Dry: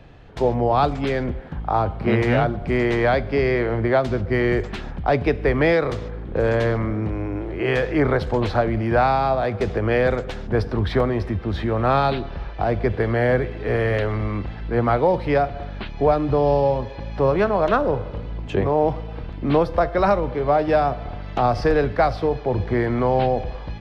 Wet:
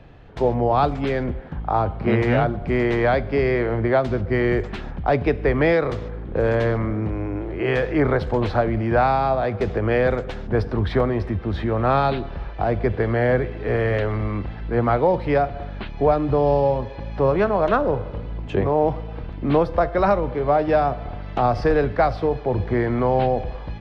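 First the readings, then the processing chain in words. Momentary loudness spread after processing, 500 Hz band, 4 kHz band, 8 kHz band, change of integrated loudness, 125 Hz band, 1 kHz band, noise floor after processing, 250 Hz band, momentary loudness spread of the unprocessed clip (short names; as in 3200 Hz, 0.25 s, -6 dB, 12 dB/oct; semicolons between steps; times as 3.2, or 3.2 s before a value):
8 LU, 0.0 dB, -3.0 dB, n/a, 0.0 dB, 0.0 dB, -0.5 dB, -33 dBFS, 0.0 dB, 9 LU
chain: high shelf 4700 Hz -8 dB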